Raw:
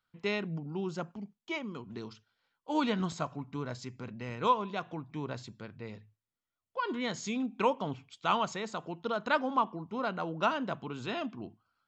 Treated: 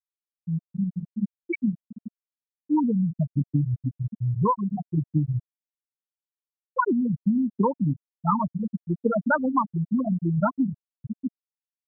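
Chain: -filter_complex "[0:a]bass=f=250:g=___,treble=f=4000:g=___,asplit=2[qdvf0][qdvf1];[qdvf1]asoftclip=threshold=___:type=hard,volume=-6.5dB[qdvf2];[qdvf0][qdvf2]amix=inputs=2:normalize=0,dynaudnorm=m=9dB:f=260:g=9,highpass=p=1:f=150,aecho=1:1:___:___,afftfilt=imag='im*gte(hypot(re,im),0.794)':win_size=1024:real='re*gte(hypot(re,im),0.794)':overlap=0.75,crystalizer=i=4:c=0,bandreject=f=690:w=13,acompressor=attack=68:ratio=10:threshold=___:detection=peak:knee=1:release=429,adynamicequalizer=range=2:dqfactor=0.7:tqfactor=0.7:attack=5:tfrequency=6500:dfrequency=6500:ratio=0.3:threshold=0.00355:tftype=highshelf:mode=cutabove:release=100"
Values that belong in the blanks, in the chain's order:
15, 1, -23dB, 433, 0.133, -22dB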